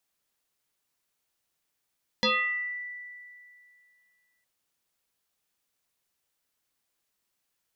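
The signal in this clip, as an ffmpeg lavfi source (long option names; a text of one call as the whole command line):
ffmpeg -f lavfi -i "aevalsrc='0.1*pow(10,-3*t/2.43)*sin(2*PI*1970*t+4.1*pow(10,-3*t/0.72)*sin(2*PI*0.37*1970*t))':duration=2.21:sample_rate=44100" out.wav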